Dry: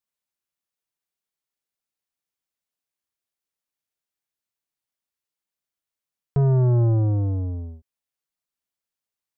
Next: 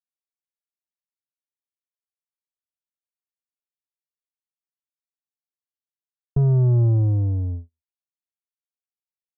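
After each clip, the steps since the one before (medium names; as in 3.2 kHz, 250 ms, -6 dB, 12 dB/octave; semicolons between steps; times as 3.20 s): high-pass 56 Hz 6 dB/octave; gate -30 dBFS, range -48 dB; tilt EQ -3 dB/octave; trim -7 dB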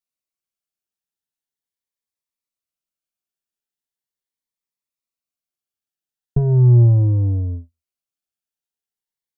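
on a send at -15 dB: reverberation, pre-delay 4 ms; on the sum: Shepard-style phaser rising 0.4 Hz; trim +4.5 dB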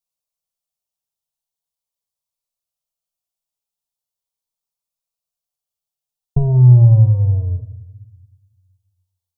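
static phaser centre 730 Hz, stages 4; simulated room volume 450 m³, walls mixed, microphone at 0.34 m; trim +4 dB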